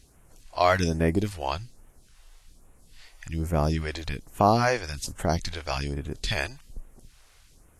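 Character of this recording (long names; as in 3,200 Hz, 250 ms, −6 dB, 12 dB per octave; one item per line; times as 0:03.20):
phaser sweep stages 2, 1.2 Hz, lowest notch 160–4,300 Hz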